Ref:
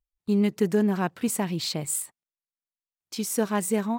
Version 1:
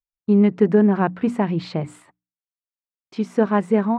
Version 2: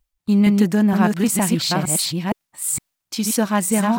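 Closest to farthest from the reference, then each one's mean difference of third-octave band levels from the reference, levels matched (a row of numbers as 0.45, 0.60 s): 2, 1; 4.5, 6.5 dB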